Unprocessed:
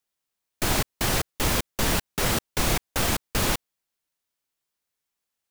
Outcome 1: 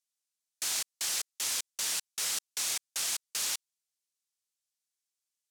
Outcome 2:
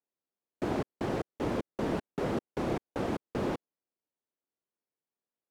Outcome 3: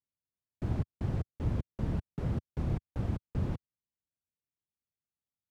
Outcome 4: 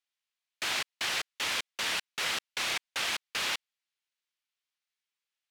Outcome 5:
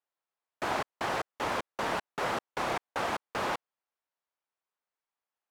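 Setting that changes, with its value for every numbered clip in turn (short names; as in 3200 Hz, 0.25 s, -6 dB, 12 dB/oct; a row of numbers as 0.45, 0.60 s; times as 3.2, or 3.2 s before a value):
band-pass, frequency: 7100, 350, 100, 2800, 900 Hz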